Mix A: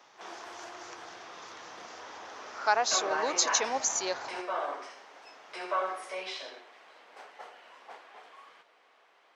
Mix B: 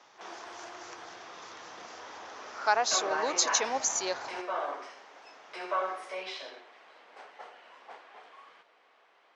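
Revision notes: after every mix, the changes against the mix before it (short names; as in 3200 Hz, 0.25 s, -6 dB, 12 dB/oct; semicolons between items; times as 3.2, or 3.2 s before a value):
background: add air absorption 53 m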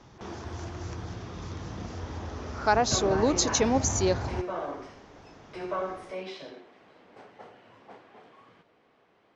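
background -4.5 dB; master: remove HPF 750 Hz 12 dB/oct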